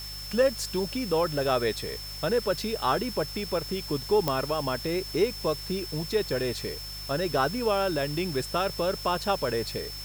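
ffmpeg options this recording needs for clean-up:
-af "adeclick=t=4,bandreject=f=50.8:t=h:w=4,bandreject=f=101.6:t=h:w=4,bandreject=f=152.4:t=h:w=4,bandreject=f=5.3k:w=30,afwtdn=0.0056"

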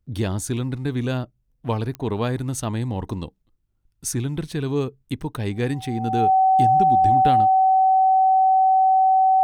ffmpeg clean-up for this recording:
-af "adeclick=t=4,bandreject=f=760:w=30"

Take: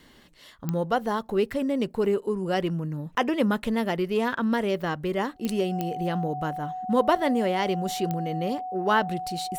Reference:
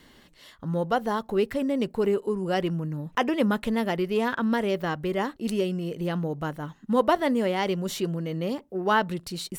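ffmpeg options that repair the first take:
-af "adeclick=t=4,bandreject=f=740:w=30"

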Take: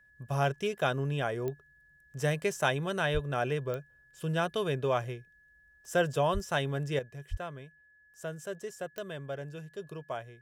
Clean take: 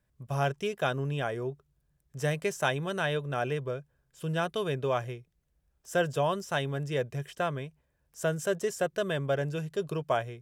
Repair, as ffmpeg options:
-filter_complex "[0:a]adeclick=t=4,bandreject=f=1.7k:w=30,asplit=3[a][b][c];[a]afade=t=out:st=3.13:d=0.02[d];[b]highpass=f=140:w=0.5412,highpass=f=140:w=1.3066,afade=t=in:st=3.13:d=0.02,afade=t=out:st=3.25:d=0.02[e];[c]afade=t=in:st=3.25:d=0.02[f];[d][e][f]amix=inputs=3:normalize=0,asplit=3[g][h][i];[g]afade=t=out:st=6.33:d=0.02[j];[h]highpass=f=140:w=0.5412,highpass=f=140:w=1.3066,afade=t=in:st=6.33:d=0.02,afade=t=out:st=6.45:d=0.02[k];[i]afade=t=in:st=6.45:d=0.02[l];[j][k][l]amix=inputs=3:normalize=0,asplit=3[m][n][o];[m]afade=t=out:st=7.3:d=0.02[p];[n]highpass=f=140:w=0.5412,highpass=f=140:w=1.3066,afade=t=in:st=7.3:d=0.02,afade=t=out:st=7.42:d=0.02[q];[o]afade=t=in:st=7.42:d=0.02[r];[p][q][r]amix=inputs=3:normalize=0,asetnsamples=n=441:p=0,asendcmd='6.99 volume volume 9.5dB',volume=0dB"

